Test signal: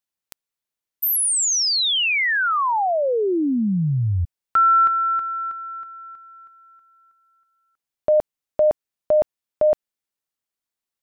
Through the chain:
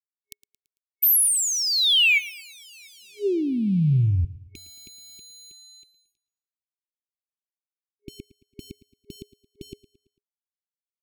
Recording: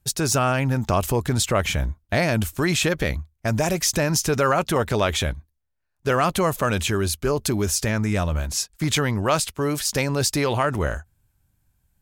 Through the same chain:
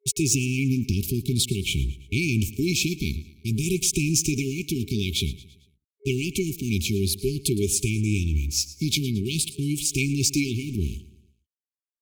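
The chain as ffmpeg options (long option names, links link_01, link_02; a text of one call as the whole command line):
ffmpeg -i in.wav -af "afftfilt=real='re*pow(10,7/40*sin(2*PI*(0.67*log(max(b,1)*sr/1024/100)/log(2)-(-0.51)*(pts-256)/sr)))':imag='im*pow(10,7/40*sin(2*PI*(0.67*log(max(b,1)*sr/1024/100)/log(2)-(-0.51)*(pts-256)/sr)))':win_size=1024:overlap=0.75,aeval=exprs='sgn(val(0))*max(abs(val(0))-0.0119,0)':channel_layout=same,afftfilt=real='re*(1-between(b*sr/4096,410,2200))':imag='im*(1-between(b*sr/4096,410,2200))':win_size=4096:overlap=0.75,aecho=1:1:112|224|336|448:0.126|0.0592|0.0278|0.0131" out.wav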